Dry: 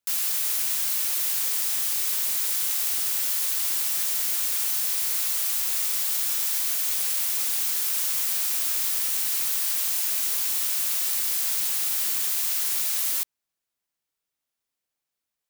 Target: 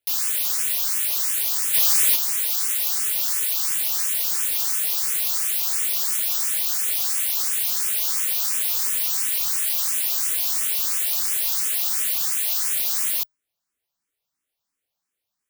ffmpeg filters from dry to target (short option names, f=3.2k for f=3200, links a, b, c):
-filter_complex "[0:a]asplit=3[a][b][c];[a]afade=t=out:st=1.73:d=0.02[d];[b]acontrast=51,afade=t=in:st=1.73:d=0.02,afade=t=out:st=2.15:d=0.02[e];[c]afade=t=in:st=2.15:d=0.02[f];[d][e][f]amix=inputs=3:normalize=0,asplit=2[g][h];[h]afreqshift=2.9[i];[g][i]amix=inputs=2:normalize=1,volume=5.5dB"